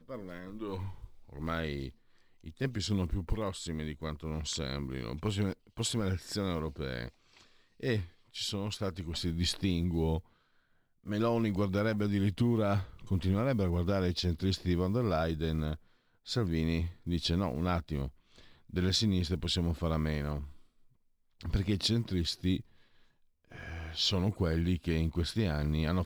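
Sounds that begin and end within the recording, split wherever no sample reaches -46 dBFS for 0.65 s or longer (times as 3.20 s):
11.06–20.56 s
21.41–22.61 s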